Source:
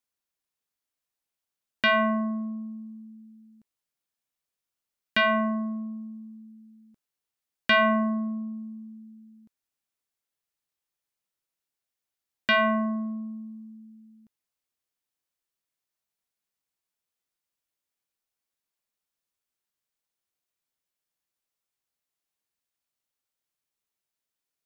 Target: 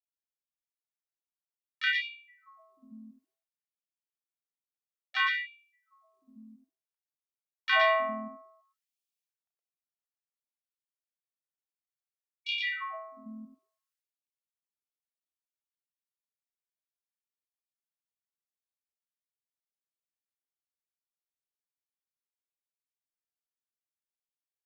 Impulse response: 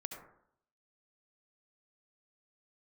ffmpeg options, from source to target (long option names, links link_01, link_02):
-filter_complex "[0:a]agate=range=-14dB:threshold=-50dB:ratio=16:detection=peak,acrossover=split=510|2000[link_01][link_02][link_03];[link_01]acompressor=threshold=-36dB:ratio=6[link_04];[link_04][link_02][link_03]amix=inputs=3:normalize=0,asplit=2[link_05][link_06];[link_06]asetrate=52444,aresample=44100,atempo=0.840896,volume=-8dB[link_07];[link_05][link_07]amix=inputs=2:normalize=0,aecho=1:1:32.07|116.6|180.8:0.708|0.794|0.251,afftfilt=real='re*gte(b*sr/1024,200*pow(2300/200,0.5+0.5*sin(2*PI*0.58*pts/sr)))':imag='im*gte(b*sr/1024,200*pow(2300/200,0.5+0.5*sin(2*PI*0.58*pts/sr)))':win_size=1024:overlap=0.75,volume=-7.5dB"